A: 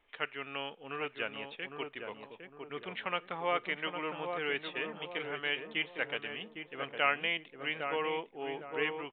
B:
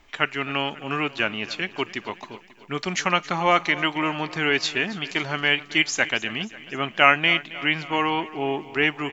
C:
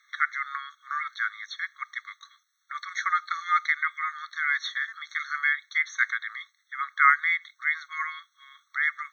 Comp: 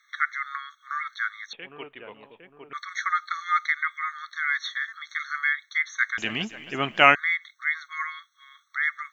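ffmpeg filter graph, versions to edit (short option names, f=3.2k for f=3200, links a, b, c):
-filter_complex "[2:a]asplit=3[a][b][c];[a]atrim=end=1.532[d];[0:a]atrim=start=1.528:end=2.732[e];[b]atrim=start=2.728:end=6.182[f];[1:a]atrim=start=6.178:end=7.152[g];[c]atrim=start=7.148[h];[d][e]acrossfade=d=0.004:c1=hsin:c2=hsin[i];[i][f]acrossfade=d=0.004:c1=hsin:c2=hsin[j];[j][g]acrossfade=d=0.004:c1=hsin:c2=hsin[k];[k][h]acrossfade=d=0.004:c1=hsin:c2=hsin"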